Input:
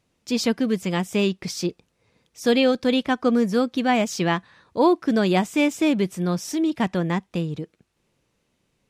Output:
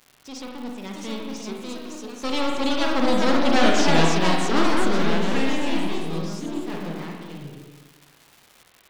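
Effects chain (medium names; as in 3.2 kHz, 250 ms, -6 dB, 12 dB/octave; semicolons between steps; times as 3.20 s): one-sided wavefolder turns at -20.5 dBFS; Doppler pass-by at 3.64 s, 33 m/s, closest 21 m; low-pass 5.5 kHz 12 dB/octave; treble shelf 4.2 kHz +9.5 dB; crackle 140 per s -37 dBFS; spring tank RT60 1.4 s, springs 41/49 ms, chirp 20 ms, DRR 0 dB; ever faster or slower copies 708 ms, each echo +2 st, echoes 3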